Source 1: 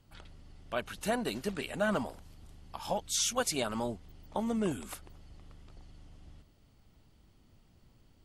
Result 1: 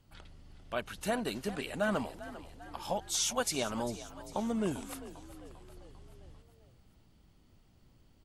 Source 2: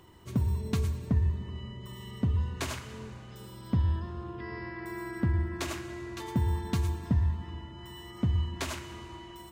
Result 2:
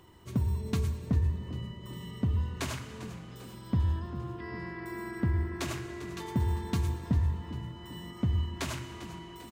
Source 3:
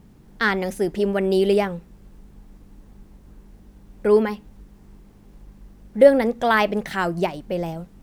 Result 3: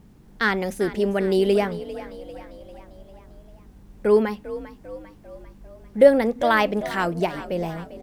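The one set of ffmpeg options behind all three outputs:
-filter_complex "[0:a]asplit=6[link_01][link_02][link_03][link_04][link_05][link_06];[link_02]adelay=397,afreqshift=46,volume=-15dB[link_07];[link_03]adelay=794,afreqshift=92,volume=-20.4dB[link_08];[link_04]adelay=1191,afreqshift=138,volume=-25.7dB[link_09];[link_05]adelay=1588,afreqshift=184,volume=-31.1dB[link_10];[link_06]adelay=1985,afreqshift=230,volume=-36.4dB[link_11];[link_01][link_07][link_08][link_09][link_10][link_11]amix=inputs=6:normalize=0,volume=-1dB"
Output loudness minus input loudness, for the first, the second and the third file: −1.0, −1.5, −1.0 LU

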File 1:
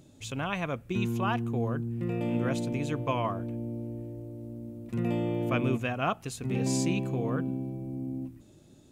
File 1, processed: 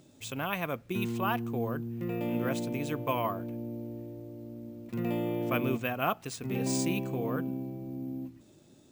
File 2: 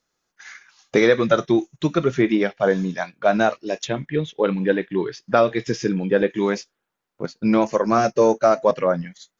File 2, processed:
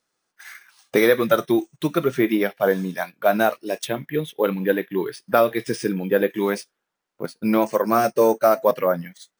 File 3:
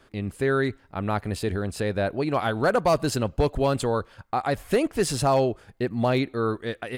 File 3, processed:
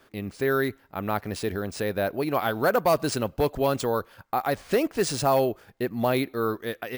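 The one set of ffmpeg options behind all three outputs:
-af "lowshelf=frequency=110:gain=-11.5,acrusher=samples=3:mix=1:aa=0.000001"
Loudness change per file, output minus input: −1.5, −1.0, −1.0 LU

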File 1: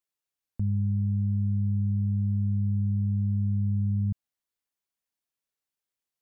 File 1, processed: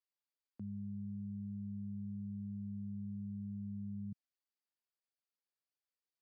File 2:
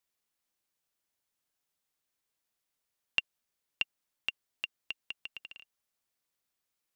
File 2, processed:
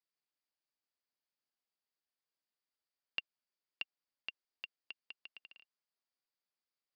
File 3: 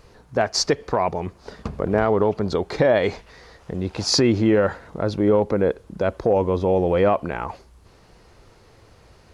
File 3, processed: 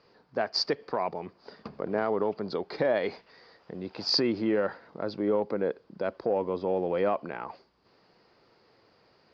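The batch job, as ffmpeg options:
-filter_complex "[0:a]aeval=exprs='0.531*(cos(1*acos(clip(val(0)/0.531,-1,1)))-cos(1*PI/2))+0.00376*(cos(7*acos(clip(val(0)/0.531,-1,1)))-cos(7*PI/2))':channel_layout=same,lowpass=frequency=4800:width_type=q:width=9,acrossover=split=150 2900:gain=0.0631 1 0.141[link_01][link_02][link_03];[link_01][link_02][link_03]amix=inputs=3:normalize=0,volume=-8.5dB"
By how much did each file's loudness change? −17.0, −10.0, −8.5 LU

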